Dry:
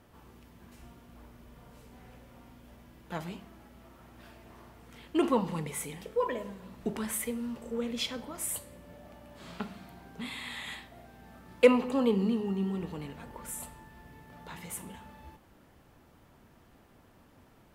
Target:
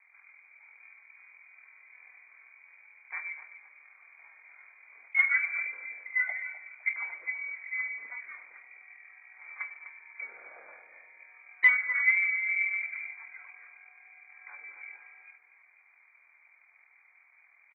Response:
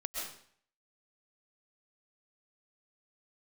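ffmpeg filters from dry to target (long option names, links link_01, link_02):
-filter_complex "[0:a]acontrast=23,equalizer=frequency=160:width_type=o:width=0.67:gain=7,equalizer=frequency=400:width_type=o:width=0.67:gain=11,equalizer=frequency=1600:width_type=o:width=0.67:gain=8,aeval=exprs='1.33*(cos(1*acos(clip(val(0)/1.33,-1,1)))-cos(1*PI/2))+0.075*(cos(7*acos(clip(val(0)/1.33,-1,1)))-cos(7*PI/2))':channel_layout=same,highpass=frequency=48:width=0.5412,highpass=frequency=48:width=1.3066,tremolo=f=41:d=0.519,asoftclip=type=tanh:threshold=-6.5dB,lowpass=frequency=2100:width_type=q:width=0.5098,lowpass=frequency=2100:width_type=q:width=0.6013,lowpass=frequency=2100:width_type=q:width=0.9,lowpass=frequency=2100:width_type=q:width=2.563,afreqshift=-2500,asplit=2[link_01][link_02];[link_02]adelay=253,lowpass=frequency=830:poles=1,volume=-7dB,asplit=2[link_03][link_04];[link_04]adelay=253,lowpass=frequency=830:poles=1,volume=0.45,asplit=2[link_05][link_06];[link_06]adelay=253,lowpass=frequency=830:poles=1,volume=0.45,asplit=2[link_07][link_08];[link_08]adelay=253,lowpass=frequency=830:poles=1,volume=0.45,asplit=2[link_09][link_10];[link_10]adelay=253,lowpass=frequency=830:poles=1,volume=0.45[link_11];[link_03][link_05][link_07][link_09][link_11]amix=inputs=5:normalize=0[link_12];[link_01][link_12]amix=inputs=2:normalize=0,acontrast=31,aderivative" -ar 24000 -c:a aac -b:a 16k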